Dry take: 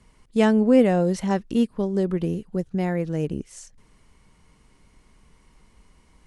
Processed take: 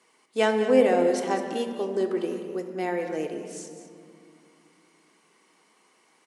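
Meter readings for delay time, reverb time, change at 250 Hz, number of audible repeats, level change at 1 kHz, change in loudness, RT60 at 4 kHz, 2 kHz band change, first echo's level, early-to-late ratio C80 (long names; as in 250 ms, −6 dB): 204 ms, 2.6 s, −8.0 dB, 1, +1.5 dB, −3.0 dB, 0.95 s, +1.5 dB, −12.0 dB, 6.5 dB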